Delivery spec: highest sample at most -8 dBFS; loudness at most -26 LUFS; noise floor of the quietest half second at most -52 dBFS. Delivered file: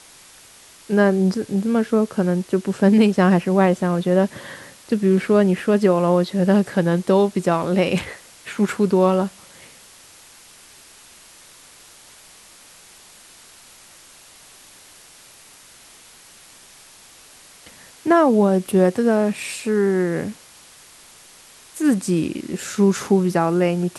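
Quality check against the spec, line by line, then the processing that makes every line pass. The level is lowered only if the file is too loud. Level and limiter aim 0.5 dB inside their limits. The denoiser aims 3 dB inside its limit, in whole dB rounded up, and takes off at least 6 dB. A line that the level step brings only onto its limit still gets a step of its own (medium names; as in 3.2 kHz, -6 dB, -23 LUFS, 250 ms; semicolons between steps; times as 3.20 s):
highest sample -4.0 dBFS: fail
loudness -19.0 LUFS: fail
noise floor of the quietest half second -47 dBFS: fail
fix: trim -7.5 dB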